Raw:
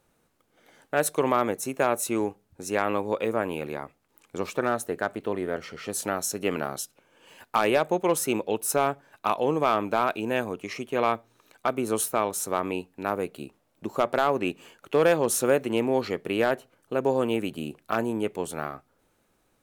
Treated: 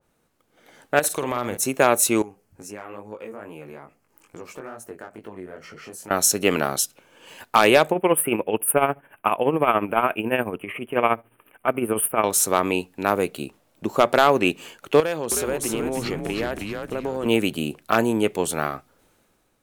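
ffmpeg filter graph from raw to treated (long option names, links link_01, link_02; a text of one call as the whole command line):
ffmpeg -i in.wav -filter_complex "[0:a]asettb=1/sr,asplit=3[link_01][link_02][link_03];[link_01]atrim=end=0.994[link_04];[link_02]atrim=start=0.99:end=1.57,asetpts=PTS-STARTPTS,afade=type=in:duration=0.004:curve=qsin,afade=type=out:start_time=0.576:duration=0.004:curve=qsin,acompressor=threshold=-30dB:ratio=3:attack=3.2:release=140:knee=1:detection=peak,asubboost=boost=11:cutoff=170,asplit=2[link_05][link_06];[link_06]adelay=49,volume=-9dB[link_07];[link_05][link_07]amix=inputs=2:normalize=0,atrim=end_sample=25578[link_08];[link_03]atrim=start=1.566[link_09];[link_04][link_08]acrossfade=duration=0.004:curve1=hsin:curve2=qsin[link_10];[link_10][link_09]acrossfade=duration=0.004:curve1=qsin:curve2=hsin,asettb=1/sr,asplit=3[link_11][link_12][link_13];[link_11]atrim=end=2.224[link_14];[link_12]atrim=start=2.22:end=6.11,asetpts=PTS-STARTPTS,afade=type=in:duration=0.004:curve=qsin,afade=type=out:start_time=3.886:duration=0.004:curve=qsin,equalizer=frequency=3700:width=4:gain=-11,acompressor=threshold=-44dB:ratio=2.5:attack=3.2:release=140:knee=1:detection=peak,flanger=delay=18:depth=4.2:speed=2.3[link_15];[link_13]atrim=start=6.106[link_16];[link_14][link_15]acrossfade=duration=0.004:curve1=hsin:curve2=qsin[link_17];[link_17][link_16]acrossfade=duration=0.004:curve1=qsin:curve2=hsin,asettb=1/sr,asplit=3[link_18][link_19][link_20];[link_18]atrim=end=7.914[link_21];[link_19]atrim=start=7.91:end=12.24,asetpts=PTS-STARTPTS,afade=type=in:duration=0.004:curve=qsin,afade=type=out:start_time=4.326:duration=0.004:curve=qsin,asuperstop=centerf=5400:order=12:qfactor=0.91,tremolo=f=14:d=0.64[link_22];[link_20]atrim=start=12.236[link_23];[link_21][link_22]acrossfade=duration=0.004:curve1=hsin:curve2=qsin[link_24];[link_24][link_23]acrossfade=duration=0.004:curve1=qsin:curve2=hsin,asettb=1/sr,asplit=3[link_25][link_26][link_27];[link_25]atrim=end=15.004[link_28];[link_26]atrim=start=15:end=17.26,asetpts=PTS-STARTPTS,afade=type=in:duration=0.004:curve=qsin,afade=type=out:start_time=2.256:duration=0.004:curve=qsin,acompressor=threshold=-33dB:ratio=3:attack=3.2:release=140:knee=1:detection=peak,asplit=6[link_29][link_30][link_31][link_32][link_33][link_34];[link_30]adelay=315,afreqshift=-95,volume=-4dB[link_35];[link_31]adelay=630,afreqshift=-190,volume=-12.6dB[link_36];[link_32]adelay=945,afreqshift=-285,volume=-21.3dB[link_37];[link_33]adelay=1260,afreqshift=-380,volume=-29.9dB[link_38];[link_34]adelay=1575,afreqshift=-475,volume=-38.5dB[link_39];[link_29][link_35][link_36][link_37][link_38][link_39]amix=inputs=6:normalize=0,atrim=end_sample=99666[link_40];[link_27]atrim=start=17.256[link_41];[link_28][link_40]acrossfade=duration=0.004:curve1=hsin:curve2=qsin[link_42];[link_42][link_41]acrossfade=duration=0.004:curve1=qsin:curve2=hsin,dynaudnorm=framelen=160:gausssize=7:maxgain=7dB,adynamicequalizer=threshold=0.0251:dfrequency=2000:dqfactor=0.7:tfrequency=2000:tqfactor=0.7:attack=5:release=100:ratio=0.375:range=2.5:mode=boostabove:tftype=highshelf" out.wav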